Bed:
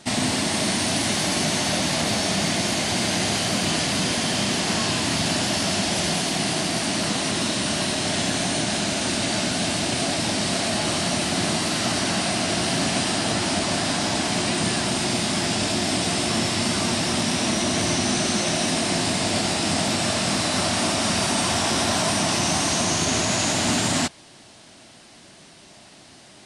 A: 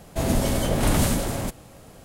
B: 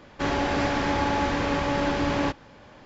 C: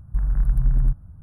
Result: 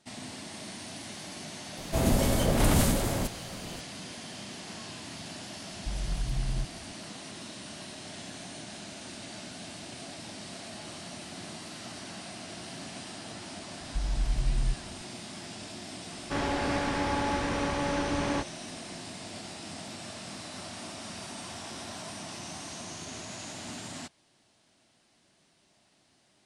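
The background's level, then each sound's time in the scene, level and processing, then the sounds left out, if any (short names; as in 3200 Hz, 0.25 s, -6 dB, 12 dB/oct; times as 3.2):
bed -19 dB
1.77 add A -3 dB + G.711 law mismatch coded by mu
5.72 add C -5 dB + low shelf 74 Hz -10.5 dB
13.81 add C -9 dB
16.11 add B -5 dB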